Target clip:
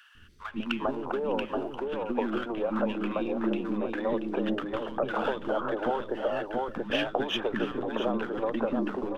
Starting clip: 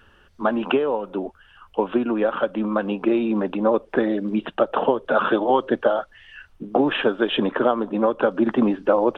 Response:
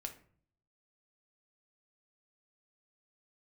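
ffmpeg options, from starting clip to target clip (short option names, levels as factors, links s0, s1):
-filter_complex "[0:a]aeval=exprs='if(lt(val(0),0),0.708*val(0),val(0))':c=same,bandreject=f=50:t=h:w=6,bandreject=f=100:t=h:w=6,bandreject=f=150:t=h:w=6,bandreject=f=200:t=h:w=6,asplit=2[s0][s1];[s1]aecho=0:1:681:0.335[s2];[s0][s2]amix=inputs=2:normalize=0,acompressor=threshold=0.0447:ratio=6,acrossover=split=320|1300[s3][s4][s5];[s3]adelay=150[s6];[s4]adelay=400[s7];[s6][s7][s5]amix=inputs=3:normalize=0,volume=1.41"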